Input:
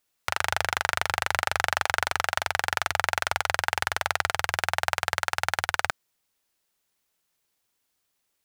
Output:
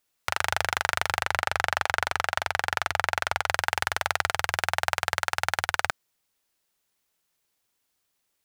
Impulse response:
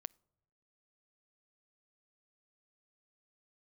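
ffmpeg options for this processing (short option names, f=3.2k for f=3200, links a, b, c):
-filter_complex "[0:a]asettb=1/sr,asplit=3[a][b][c];[a]atrim=end=1.224[d];[b]atrim=start=1.22:end=3.49,asetpts=PTS-STARTPTS,afade=t=in:d=0.004:c=qsin,afade=t=out:st=2.266:d=0.004:c=qsin,highshelf=f=5.1k:g=-5.5[e];[c]atrim=start=3.486[f];[d][e]acrossfade=d=0.004:c1=hsin:c2=qsin[g];[g][f]acrossfade=d=0.004:c1=qsin:c2=hsin"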